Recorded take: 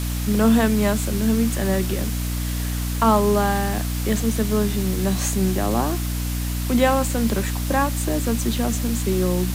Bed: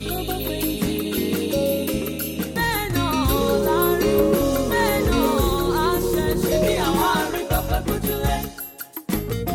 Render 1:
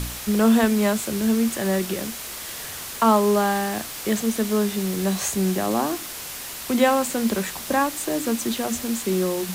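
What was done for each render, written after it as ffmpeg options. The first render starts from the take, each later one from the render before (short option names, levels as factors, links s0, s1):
-af "bandreject=f=60:t=h:w=4,bandreject=f=120:t=h:w=4,bandreject=f=180:t=h:w=4,bandreject=f=240:t=h:w=4,bandreject=f=300:t=h:w=4"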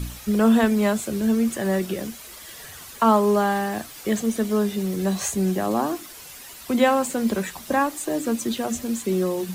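-af "afftdn=nr=10:nf=-35"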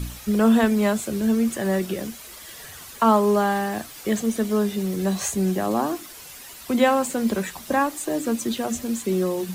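-af anull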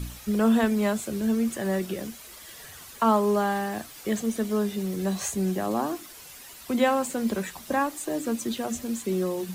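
-af "volume=0.631"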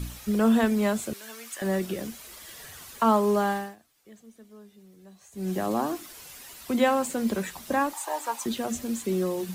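-filter_complex "[0:a]asettb=1/sr,asplit=3[s0][s1][s2];[s0]atrim=end=1.134[s3];[s1]atrim=start=1.13:end=1.62,asetpts=PTS-STARTPTS,afade=t=in:d=0.004:c=qsin,afade=t=out:st=0.486:d=0.004:c=qsin,highpass=1100[s4];[s2]atrim=start=1.616[s5];[s3][s4]acrossfade=d=0.004:c1=hsin:c2=qsin[s6];[s6][s5]acrossfade=d=0.004:c1=qsin:c2=hsin,asettb=1/sr,asplit=3[s7][s8][s9];[s7]atrim=end=7.934[s10];[s8]atrim=start=7.93:end=8.46,asetpts=PTS-STARTPTS,afade=t=in:d=0.004:c=qsin,afade=t=out:st=0.526:d=0.004:c=qsin,highpass=f=890:t=q:w=8.7[s11];[s9]atrim=start=8.456[s12];[s10][s11]acrossfade=d=0.004:c1=hsin:c2=qsin[s13];[s13][s12]acrossfade=d=0.004:c1=qsin:c2=hsin,asplit=3[s14][s15][s16];[s14]atrim=end=3.76,asetpts=PTS-STARTPTS,afade=t=out:st=3.5:d=0.26:silence=0.0668344[s17];[s15]atrim=start=3.76:end=5.31,asetpts=PTS-STARTPTS,volume=0.0668[s18];[s16]atrim=start=5.31,asetpts=PTS-STARTPTS,afade=t=in:d=0.26:silence=0.0668344[s19];[s17][s18][s19]concat=n=3:v=0:a=1"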